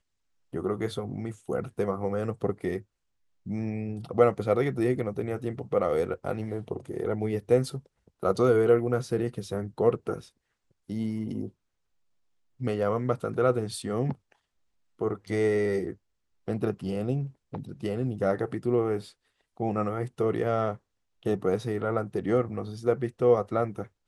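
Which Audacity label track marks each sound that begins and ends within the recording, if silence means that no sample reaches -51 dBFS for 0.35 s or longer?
0.530000	2.830000	sound
3.460000	10.290000	sound
10.890000	11.500000	sound
12.600000	14.320000	sound
14.990000	15.960000	sound
16.480000	19.120000	sound
19.570000	20.770000	sound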